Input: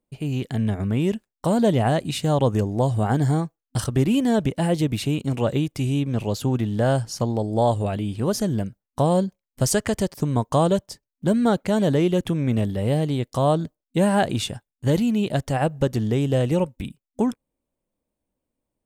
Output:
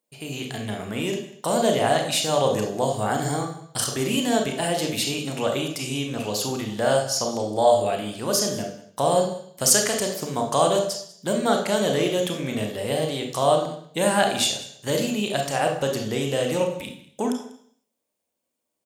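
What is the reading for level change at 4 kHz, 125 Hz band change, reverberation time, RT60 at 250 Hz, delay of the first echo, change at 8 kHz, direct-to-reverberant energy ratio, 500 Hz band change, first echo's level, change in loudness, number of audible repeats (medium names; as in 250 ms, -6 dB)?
+7.0 dB, -9.5 dB, 0.60 s, 0.65 s, 194 ms, +9.0 dB, 2.0 dB, +1.0 dB, -19.5 dB, -1.0 dB, 1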